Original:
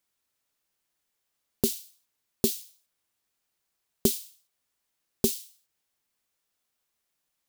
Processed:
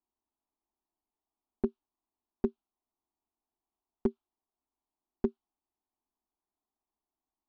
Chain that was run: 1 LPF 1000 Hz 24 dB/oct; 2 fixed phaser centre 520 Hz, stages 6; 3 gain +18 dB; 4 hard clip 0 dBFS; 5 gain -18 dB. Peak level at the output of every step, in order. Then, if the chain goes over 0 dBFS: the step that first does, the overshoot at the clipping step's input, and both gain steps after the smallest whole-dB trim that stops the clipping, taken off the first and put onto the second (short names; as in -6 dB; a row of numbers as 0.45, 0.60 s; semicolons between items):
-8.5, -14.0, +4.0, 0.0, -18.0 dBFS; step 3, 4.0 dB; step 3 +14 dB, step 5 -14 dB